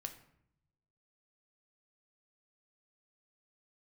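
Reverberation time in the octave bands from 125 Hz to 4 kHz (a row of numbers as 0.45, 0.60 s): 1.4, 1.0, 0.75, 0.70, 0.60, 0.45 s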